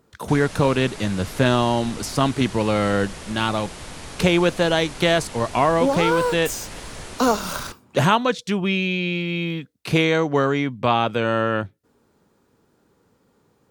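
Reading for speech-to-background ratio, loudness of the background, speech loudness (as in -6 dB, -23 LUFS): 15.0 dB, -36.5 LUFS, -21.5 LUFS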